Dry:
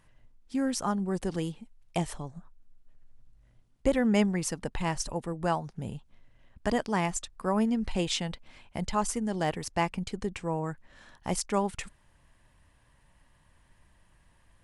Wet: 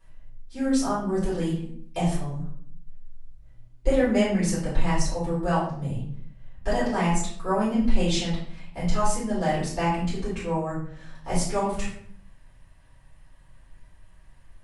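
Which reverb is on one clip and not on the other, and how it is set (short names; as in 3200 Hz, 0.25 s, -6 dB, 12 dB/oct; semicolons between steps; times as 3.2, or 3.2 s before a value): shoebox room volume 93 m³, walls mixed, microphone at 4.3 m; gain -11 dB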